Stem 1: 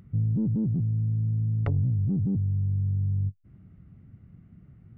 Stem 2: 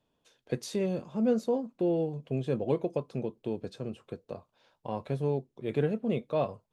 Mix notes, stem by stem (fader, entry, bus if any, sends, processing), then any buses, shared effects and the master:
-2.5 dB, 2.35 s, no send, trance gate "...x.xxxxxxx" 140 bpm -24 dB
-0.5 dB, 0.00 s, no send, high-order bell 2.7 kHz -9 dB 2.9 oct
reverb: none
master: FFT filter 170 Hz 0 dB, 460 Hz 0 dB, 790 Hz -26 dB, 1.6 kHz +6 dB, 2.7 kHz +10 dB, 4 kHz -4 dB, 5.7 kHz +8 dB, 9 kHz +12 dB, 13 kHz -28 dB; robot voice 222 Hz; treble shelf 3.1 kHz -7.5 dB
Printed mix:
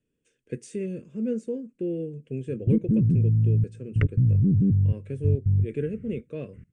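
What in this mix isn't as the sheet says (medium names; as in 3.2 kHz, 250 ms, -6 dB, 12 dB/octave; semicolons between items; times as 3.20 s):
stem 1 -2.5 dB -> +5.5 dB; master: missing robot voice 222 Hz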